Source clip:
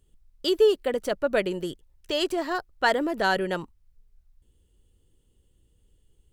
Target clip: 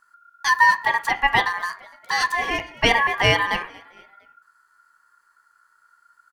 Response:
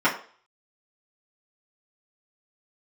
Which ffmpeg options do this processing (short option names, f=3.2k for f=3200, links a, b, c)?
-filter_complex "[0:a]asplit=4[a][b][c][d];[b]adelay=230,afreqshift=78,volume=-23dB[e];[c]adelay=460,afreqshift=156,volume=-29.6dB[f];[d]adelay=690,afreqshift=234,volume=-36.1dB[g];[a][e][f][g]amix=inputs=4:normalize=0,asplit=2[h][i];[1:a]atrim=start_sample=2205[j];[i][j]afir=irnorm=-1:irlink=0,volume=-22dB[k];[h][k]amix=inputs=2:normalize=0,aeval=exprs='val(0)*sin(2*PI*1400*n/s)':c=same,volume=5.5dB"